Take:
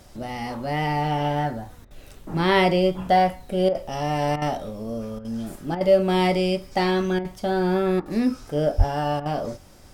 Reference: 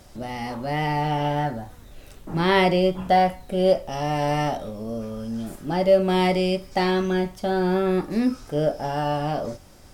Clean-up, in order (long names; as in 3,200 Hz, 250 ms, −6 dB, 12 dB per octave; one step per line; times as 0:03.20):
0:08.77–0:08.89: high-pass filter 140 Hz 24 dB per octave
repair the gap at 0:01.85/0:03.69/0:04.36/0:05.19/0:05.75/0:07.19/0:08.00/0:09.20, 56 ms